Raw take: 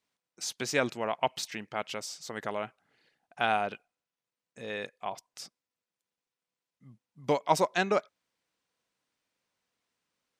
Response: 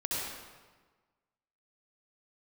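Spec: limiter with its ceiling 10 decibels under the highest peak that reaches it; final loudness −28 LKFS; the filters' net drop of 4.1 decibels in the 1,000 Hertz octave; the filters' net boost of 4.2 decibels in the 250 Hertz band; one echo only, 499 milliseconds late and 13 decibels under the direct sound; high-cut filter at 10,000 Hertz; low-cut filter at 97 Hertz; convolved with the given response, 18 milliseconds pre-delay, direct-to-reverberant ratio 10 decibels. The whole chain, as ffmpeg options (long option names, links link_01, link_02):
-filter_complex "[0:a]highpass=97,lowpass=10000,equalizer=frequency=250:width_type=o:gain=6,equalizer=frequency=1000:width_type=o:gain=-6,alimiter=limit=-21.5dB:level=0:latency=1,aecho=1:1:499:0.224,asplit=2[link_01][link_02];[1:a]atrim=start_sample=2205,adelay=18[link_03];[link_02][link_03]afir=irnorm=-1:irlink=0,volume=-15.5dB[link_04];[link_01][link_04]amix=inputs=2:normalize=0,volume=8.5dB"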